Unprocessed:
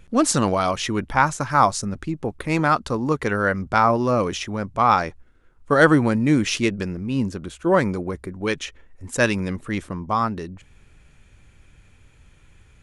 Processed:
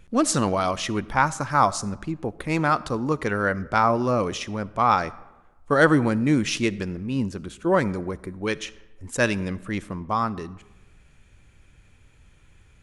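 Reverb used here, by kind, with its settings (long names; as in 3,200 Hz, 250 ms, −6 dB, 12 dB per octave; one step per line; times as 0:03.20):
comb and all-pass reverb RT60 1.1 s, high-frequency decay 0.6×, pre-delay 20 ms, DRR 19 dB
level −2.5 dB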